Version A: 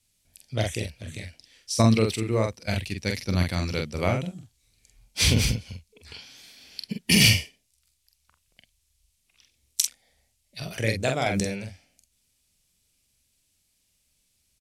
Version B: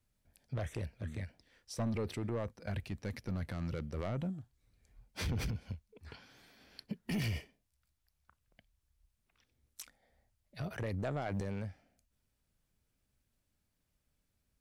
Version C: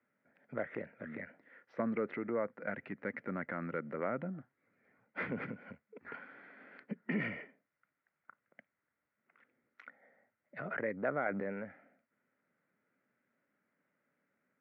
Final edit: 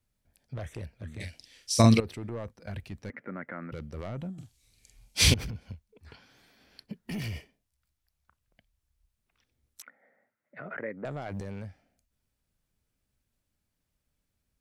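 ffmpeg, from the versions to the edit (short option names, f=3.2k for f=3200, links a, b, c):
-filter_complex "[0:a]asplit=2[a][b];[2:a]asplit=2[c][d];[1:a]asplit=5[e][f][g][h][i];[e]atrim=end=1.202[j];[a]atrim=start=1.198:end=2.002[k];[f]atrim=start=1.998:end=3.102[l];[c]atrim=start=3.098:end=3.722[m];[g]atrim=start=3.718:end=4.382[n];[b]atrim=start=4.378:end=5.342[o];[h]atrim=start=5.338:end=9.822[p];[d]atrim=start=9.818:end=11.052[q];[i]atrim=start=11.048[r];[j][k]acrossfade=d=0.004:c1=hsin:c2=hsin[s];[s][l]acrossfade=d=0.004:c1=hsin:c2=hsin[t];[t][m]acrossfade=d=0.004:c1=hsin:c2=hsin[u];[u][n]acrossfade=d=0.004:c1=hsin:c2=hsin[v];[v][o]acrossfade=d=0.004:c1=hsin:c2=hsin[w];[w][p]acrossfade=d=0.004:c1=hsin:c2=hsin[x];[x][q]acrossfade=d=0.004:c1=hsin:c2=hsin[y];[y][r]acrossfade=d=0.004:c1=hsin:c2=hsin"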